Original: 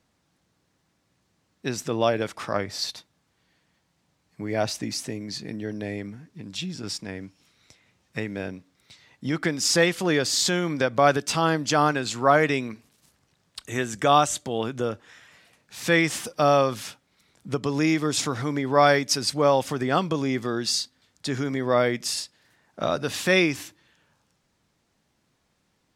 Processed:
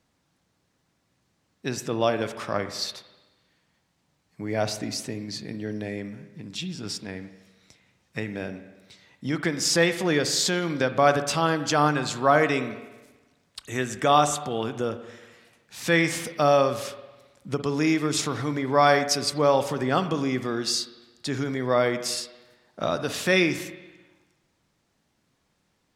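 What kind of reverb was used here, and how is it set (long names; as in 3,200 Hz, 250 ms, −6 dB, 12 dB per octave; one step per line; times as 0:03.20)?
spring reverb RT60 1.2 s, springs 47/54 ms, chirp 35 ms, DRR 10.5 dB
level −1 dB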